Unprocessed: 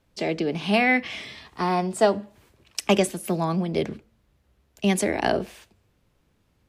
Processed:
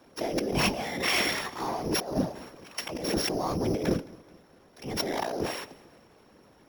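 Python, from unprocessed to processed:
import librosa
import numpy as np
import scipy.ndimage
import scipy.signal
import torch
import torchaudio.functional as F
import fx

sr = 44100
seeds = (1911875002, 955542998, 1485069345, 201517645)

y = np.r_[np.sort(x[:len(x) // 8 * 8].reshape(-1, 8), axis=1).ravel(), x[len(x) // 8 * 8:]]
y = scipy.signal.sosfilt(scipy.signal.butter(2, 270.0, 'highpass', fs=sr, output='sos'), y)
y = fx.high_shelf(y, sr, hz=2700.0, db=-11.0)
y = fx.over_compress(y, sr, threshold_db=-37.0, ratio=-1.0)
y = fx.transient(y, sr, attack_db=-11, sustain_db=1)
y = fx.whisperise(y, sr, seeds[0])
y = fx.echo_feedback(y, sr, ms=216, feedback_pct=47, wet_db=-23.5)
y = y * 10.0 ** (8.5 / 20.0)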